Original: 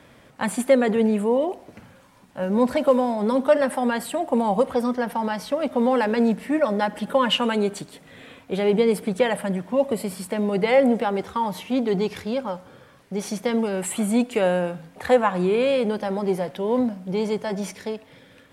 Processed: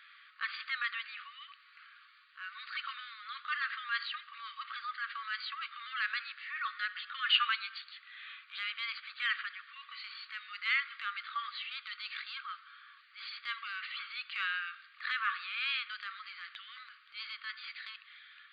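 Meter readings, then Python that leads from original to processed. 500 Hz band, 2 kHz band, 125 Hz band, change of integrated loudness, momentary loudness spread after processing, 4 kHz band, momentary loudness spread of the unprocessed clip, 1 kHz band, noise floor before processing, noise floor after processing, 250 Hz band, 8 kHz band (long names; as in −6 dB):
below −40 dB, −2.5 dB, below −40 dB, −14.0 dB, 15 LU, −3.0 dB, 10 LU, −14.0 dB, −52 dBFS, −61 dBFS, below −40 dB, below −40 dB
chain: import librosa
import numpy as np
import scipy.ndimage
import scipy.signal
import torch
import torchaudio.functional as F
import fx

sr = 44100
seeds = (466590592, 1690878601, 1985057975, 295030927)

y = fx.brickwall_bandpass(x, sr, low_hz=1100.0, high_hz=4800.0)
y = fx.transient(y, sr, attack_db=-7, sustain_db=1)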